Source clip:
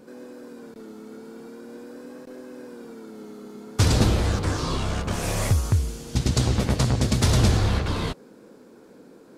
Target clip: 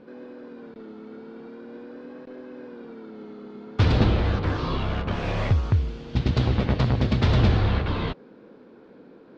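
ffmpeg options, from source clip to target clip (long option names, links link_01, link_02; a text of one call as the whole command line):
ffmpeg -i in.wav -af "lowpass=frequency=3700:width=0.5412,lowpass=frequency=3700:width=1.3066" out.wav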